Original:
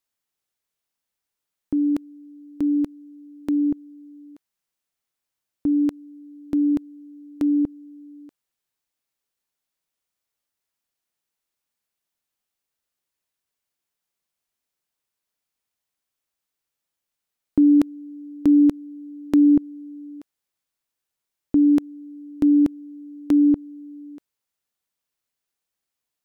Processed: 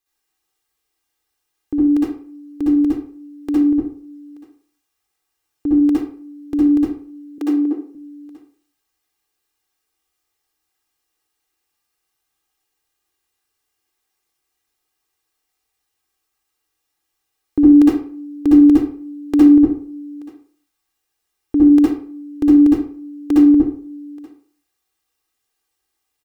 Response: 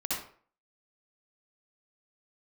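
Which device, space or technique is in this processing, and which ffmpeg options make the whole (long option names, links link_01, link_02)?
microphone above a desk: -filter_complex "[0:a]aecho=1:1:2.5:0.82[link_01];[1:a]atrim=start_sample=2205[link_02];[link_01][link_02]afir=irnorm=-1:irlink=0,asettb=1/sr,asplit=3[link_03][link_04][link_05];[link_03]atrim=end=7.384[link_06];[link_04]atrim=start=7.38:end=7.95,asetpts=PTS-STARTPTS,afade=type=in:duration=0.004:curve=qsin,afade=type=out:start_time=0.566:duration=0.004:curve=qsin,highpass=frequency=300:width=0.5412,highpass=frequency=300:width=1.3066[link_07];[link_05]atrim=start=7.946[link_08];[link_06][link_07]acrossfade=duration=0.004:curve1=hsin:curve2=qsin[link_09];[link_09][link_08]acrossfade=duration=0.004:curve1=qsin:curve2=hsin,volume=2dB"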